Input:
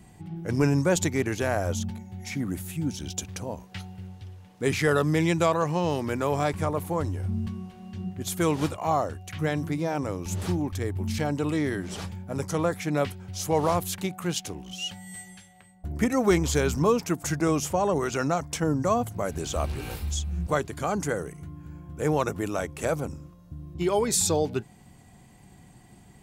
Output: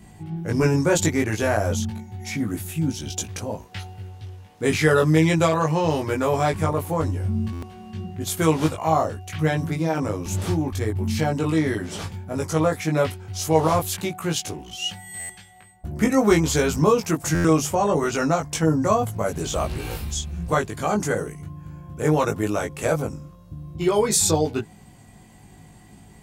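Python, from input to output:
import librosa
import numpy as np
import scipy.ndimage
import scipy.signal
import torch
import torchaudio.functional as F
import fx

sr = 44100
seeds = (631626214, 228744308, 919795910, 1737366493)

y = fx.doubler(x, sr, ms=19.0, db=-2)
y = fx.buffer_glitch(y, sr, at_s=(7.52, 15.19, 17.34), block=512, repeats=8)
y = y * librosa.db_to_amplitude(2.5)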